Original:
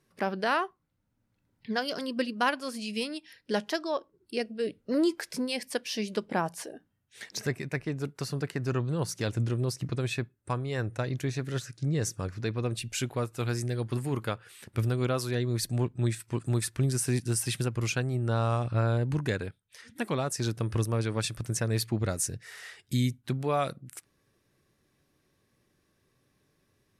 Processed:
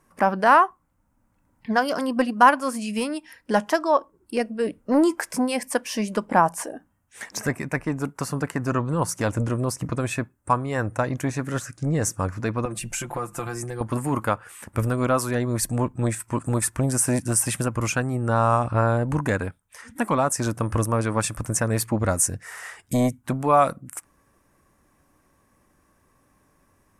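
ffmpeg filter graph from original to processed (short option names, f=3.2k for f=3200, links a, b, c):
-filter_complex "[0:a]asettb=1/sr,asplit=3[a][b][c];[a]atrim=end=12.654[d];[b]atrim=start=12.65:end=13.81,asetpts=PTS-STARTPTS,afade=t=in:d=0.004:c=qsin,afade=t=out:st=1.156:d=0.004:c=qsin,bandreject=f=50:t=h:w=6,bandreject=f=100:t=h:w=6,bandreject=f=150:t=h:w=6,bandreject=f=200:t=h:w=6,aecho=1:1:5.8:0.91,atrim=end_sample=51156,acompressor=threshold=-32dB:ratio=10:attack=3.2:release=140:knee=1:detection=peak[e];[c]atrim=start=13.806[f];[d][e]acrossfade=d=0.004:c1=hsin:c2=qsin[g];[g][f]acrossfade=d=0.004:c1=qsin:c2=hsin,lowshelf=f=330:t=q:w=3:g=7,acontrast=89,equalizer=f=125:t=o:w=1:g=-11,equalizer=f=250:t=o:w=1:g=-10,equalizer=f=500:t=o:w=1:g=6,equalizer=f=1k:t=o:w=1:g=9,equalizer=f=4k:t=o:w=1:g=-12,equalizer=f=8k:t=o:w=1:g=5"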